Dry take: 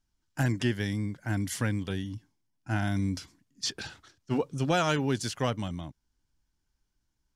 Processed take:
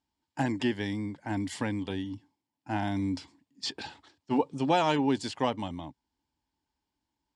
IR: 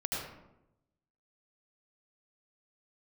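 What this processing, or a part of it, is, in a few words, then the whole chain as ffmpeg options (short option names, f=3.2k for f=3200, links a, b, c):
car door speaker: -af "highpass=97,equalizer=f=120:t=q:w=4:g=-9,equalizer=f=180:t=q:w=4:g=-5,equalizer=f=280:t=q:w=4:g=5,equalizer=f=880:t=q:w=4:g=10,equalizer=f=1.4k:t=q:w=4:g=-8,equalizer=f=6.1k:t=q:w=4:g=-10,lowpass=f=7.8k:w=0.5412,lowpass=f=7.8k:w=1.3066"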